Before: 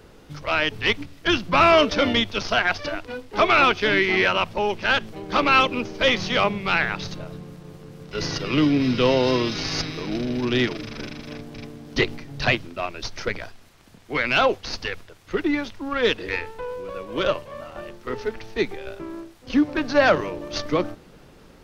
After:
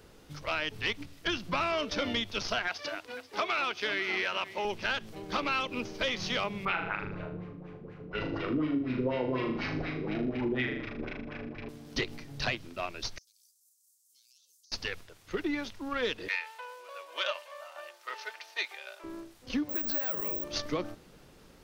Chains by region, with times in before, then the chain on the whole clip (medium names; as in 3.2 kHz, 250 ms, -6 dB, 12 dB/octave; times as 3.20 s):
2.68–4.65 s: high-pass 420 Hz 6 dB/octave + delay 489 ms -18.5 dB
6.65–11.69 s: LFO low-pass sine 4.1 Hz 270–2400 Hz + flutter echo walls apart 6.7 m, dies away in 0.49 s
13.18–14.72 s: inverse Chebyshev high-pass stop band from 2.1 kHz, stop band 60 dB + compression 12:1, threshold -55 dBFS
16.28–19.04 s: high-pass 640 Hz 24 dB/octave + dynamic bell 2.7 kHz, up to +5 dB, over -42 dBFS, Q 0.88 + comb 3.3 ms, depth 34%
19.69–20.44 s: compression 4:1, threshold -26 dBFS + careless resampling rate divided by 2×, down none, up zero stuff
whole clip: treble shelf 3.9 kHz +6.5 dB; compression, threshold -20 dBFS; trim -7.5 dB